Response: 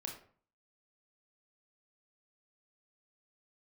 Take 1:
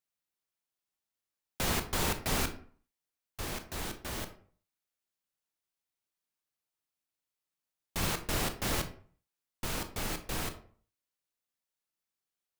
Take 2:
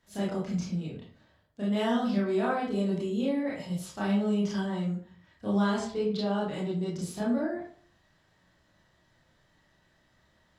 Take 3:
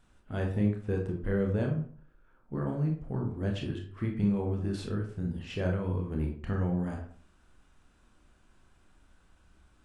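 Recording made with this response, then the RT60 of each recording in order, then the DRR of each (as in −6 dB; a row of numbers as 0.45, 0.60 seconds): 3; 0.45, 0.45, 0.45 seconds; 7.5, −6.5, 1.0 decibels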